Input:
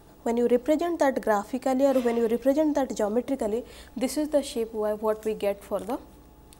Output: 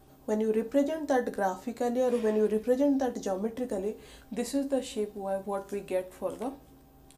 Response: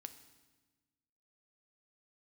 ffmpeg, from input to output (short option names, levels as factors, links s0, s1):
-filter_complex "[0:a]asplit=2[s0][s1];[s1]adelay=13,volume=0.473[s2];[s0][s2]amix=inputs=2:normalize=0[s3];[1:a]atrim=start_sample=2205,atrim=end_sample=3087[s4];[s3][s4]afir=irnorm=-1:irlink=0,asetrate=40517,aresample=44100"